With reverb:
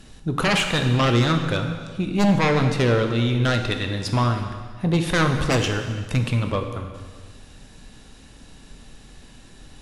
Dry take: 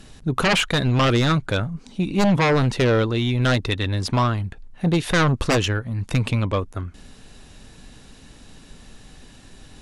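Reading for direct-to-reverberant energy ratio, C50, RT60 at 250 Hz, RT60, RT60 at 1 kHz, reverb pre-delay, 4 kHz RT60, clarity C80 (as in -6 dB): 5.0 dB, 6.5 dB, 1.6 s, 1.6 s, 1.6 s, 8 ms, 1.5 s, 8.0 dB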